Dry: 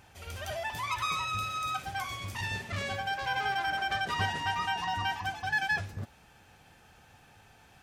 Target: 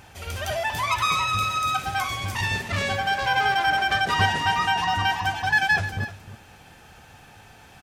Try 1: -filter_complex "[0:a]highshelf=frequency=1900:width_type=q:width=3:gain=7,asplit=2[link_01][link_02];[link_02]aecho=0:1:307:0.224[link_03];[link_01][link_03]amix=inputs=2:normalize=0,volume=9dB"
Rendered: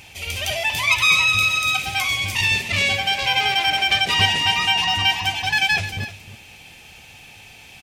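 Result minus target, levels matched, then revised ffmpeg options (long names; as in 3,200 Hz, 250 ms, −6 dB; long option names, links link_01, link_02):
4,000 Hz band +5.0 dB
-filter_complex "[0:a]asplit=2[link_01][link_02];[link_02]aecho=0:1:307:0.224[link_03];[link_01][link_03]amix=inputs=2:normalize=0,volume=9dB"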